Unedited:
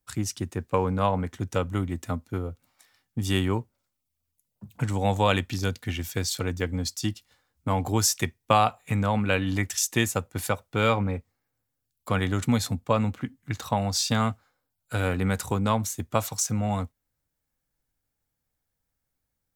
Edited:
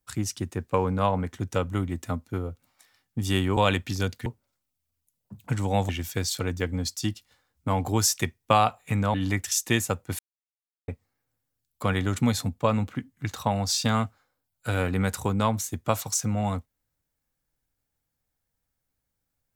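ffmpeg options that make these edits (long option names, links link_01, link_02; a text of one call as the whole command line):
ffmpeg -i in.wav -filter_complex "[0:a]asplit=7[link_01][link_02][link_03][link_04][link_05][link_06][link_07];[link_01]atrim=end=3.572[link_08];[link_02]atrim=start=5.198:end=5.892[link_09];[link_03]atrim=start=3.568:end=5.202[link_10];[link_04]atrim=start=5.888:end=9.142[link_11];[link_05]atrim=start=9.398:end=10.45,asetpts=PTS-STARTPTS,afade=type=out:start_time=1.048:duration=0.004:curve=hsin[link_12];[link_06]atrim=start=10.45:end=11.14,asetpts=PTS-STARTPTS,volume=0[link_13];[link_07]atrim=start=11.14,asetpts=PTS-STARTPTS,afade=type=in:duration=0.004:curve=hsin[link_14];[link_08][link_09]acrossfade=duration=0.004:curve1=hsin:curve2=hsin[link_15];[link_15][link_10]acrossfade=duration=0.004:curve1=hsin:curve2=hsin[link_16];[link_16][link_11]acrossfade=duration=0.004:curve1=hsin:curve2=hsin[link_17];[link_12][link_13][link_14]concat=n=3:v=0:a=1[link_18];[link_17][link_18]acrossfade=duration=0.004:curve1=hsin:curve2=hsin" out.wav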